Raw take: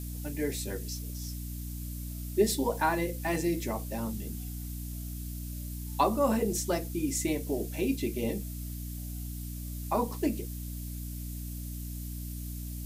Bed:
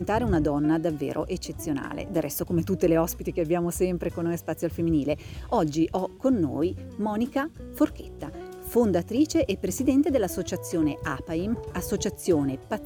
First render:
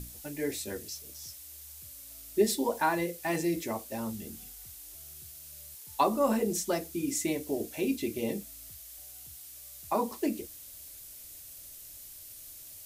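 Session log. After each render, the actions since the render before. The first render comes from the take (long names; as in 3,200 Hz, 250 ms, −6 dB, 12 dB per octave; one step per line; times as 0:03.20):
mains-hum notches 60/120/180/240/300 Hz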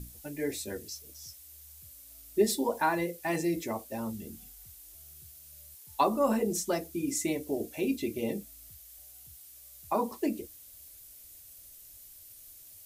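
broadband denoise 6 dB, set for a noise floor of −48 dBFS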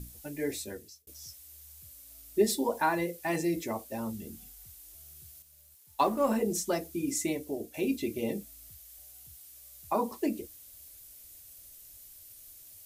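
0:00.57–0:01.07: fade out
0:05.42–0:06.36: mu-law and A-law mismatch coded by A
0:07.22–0:07.74: fade out, to −6 dB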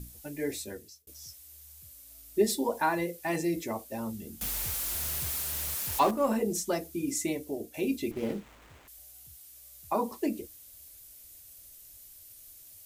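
0:04.41–0:06.11: converter with a step at zero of −28 dBFS
0:08.11–0:08.88: windowed peak hold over 9 samples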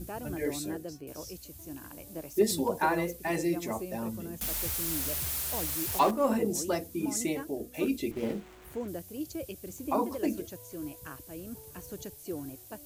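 mix in bed −15 dB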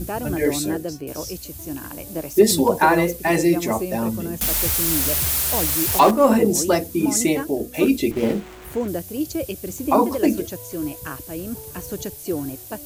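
level +12 dB
brickwall limiter −3 dBFS, peak gain reduction 3 dB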